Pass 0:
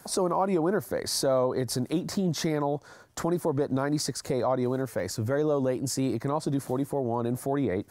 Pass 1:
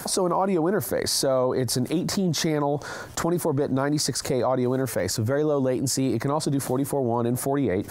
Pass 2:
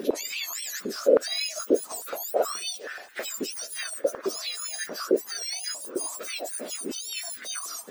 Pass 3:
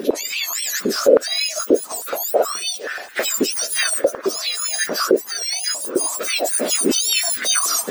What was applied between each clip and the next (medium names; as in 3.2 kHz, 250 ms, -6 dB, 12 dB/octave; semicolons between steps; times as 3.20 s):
level flattener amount 50%; trim +1.5 dB
spectrum inverted on a logarithmic axis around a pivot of 1.6 kHz; step-sequenced high-pass 9.4 Hz 400–1700 Hz; trim -5 dB
recorder AGC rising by 7.1 dB/s; trim +6.5 dB